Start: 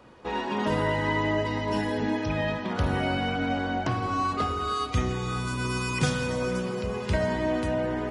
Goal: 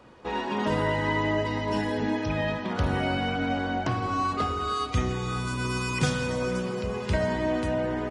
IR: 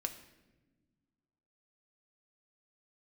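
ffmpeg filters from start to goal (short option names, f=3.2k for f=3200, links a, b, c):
-af "aresample=22050,aresample=44100"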